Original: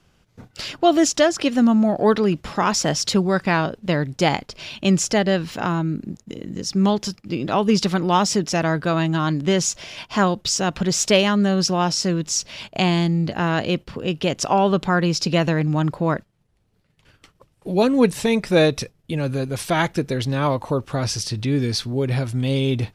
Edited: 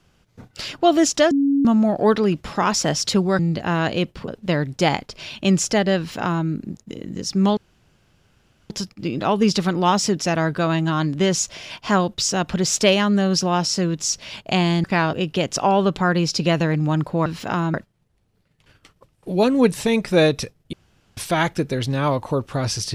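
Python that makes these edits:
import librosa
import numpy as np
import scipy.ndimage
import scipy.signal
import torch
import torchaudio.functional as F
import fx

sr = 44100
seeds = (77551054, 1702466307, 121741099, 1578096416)

y = fx.edit(x, sr, fx.bleep(start_s=1.31, length_s=0.34, hz=279.0, db=-14.5),
    fx.swap(start_s=3.39, length_s=0.29, other_s=13.11, other_length_s=0.89),
    fx.duplicate(start_s=5.38, length_s=0.48, to_s=16.13),
    fx.insert_room_tone(at_s=6.97, length_s=1.13),
    fx.room_tone_fill(start_s=19.12, length_s=0.44), tone=tone)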